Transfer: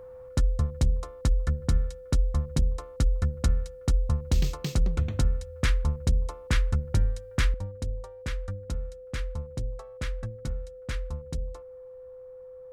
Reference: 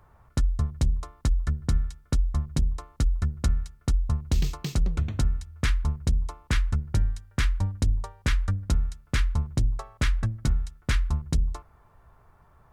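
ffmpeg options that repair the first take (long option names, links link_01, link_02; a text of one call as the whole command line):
ffmpeg -i in.wav -af "bandreject=frequency=510:width=30,asetnsamples=nb_out_samples=441:pad=0,asendcmd='7.54 volume volume 8.5dB',volume=0dB" out.wav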